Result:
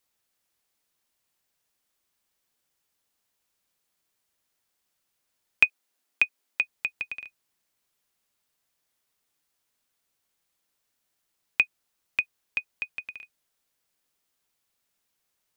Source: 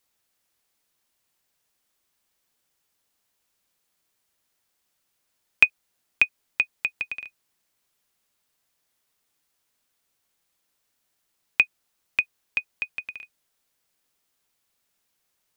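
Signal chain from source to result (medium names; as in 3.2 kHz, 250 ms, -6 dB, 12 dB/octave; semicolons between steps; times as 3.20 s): 5.66–6.61 s: steep high-pass 200 Hz; trim -3 dB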